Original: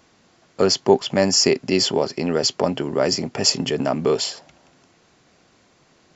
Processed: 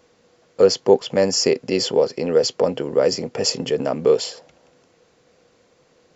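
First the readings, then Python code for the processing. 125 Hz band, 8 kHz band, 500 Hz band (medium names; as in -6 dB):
-3.5 dB, no reading, +3.5 dB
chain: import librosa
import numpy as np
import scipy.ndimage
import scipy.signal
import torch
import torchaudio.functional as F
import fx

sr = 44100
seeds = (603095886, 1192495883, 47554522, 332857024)

y = fx.peak_eq(x, sr, hz=490.0, db=15.0, octaves=0.27)
y = y * librosa.db_to_amplitude(-3.5)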